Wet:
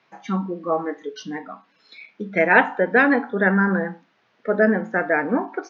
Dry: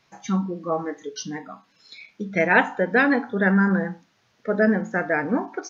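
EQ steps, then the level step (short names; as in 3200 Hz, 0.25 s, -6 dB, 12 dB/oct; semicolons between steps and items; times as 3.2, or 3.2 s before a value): BPF 220–3000 Hz; +3.0 dB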